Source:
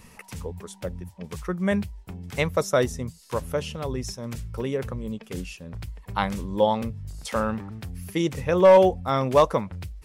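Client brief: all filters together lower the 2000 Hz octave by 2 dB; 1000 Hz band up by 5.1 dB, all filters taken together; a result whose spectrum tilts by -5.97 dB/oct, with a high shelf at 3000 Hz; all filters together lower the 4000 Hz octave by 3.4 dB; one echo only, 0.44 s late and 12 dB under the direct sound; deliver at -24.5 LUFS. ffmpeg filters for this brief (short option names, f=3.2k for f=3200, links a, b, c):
-af "equalizer=f=1k:t=o:g=7,equalizer=f=2k:t=o:g=-5,highshelf=f=3k:g=3.5,equalizer=f=4k:t=o:g=-6,aecho=1:1:440:0.251,volume=-2.5dB"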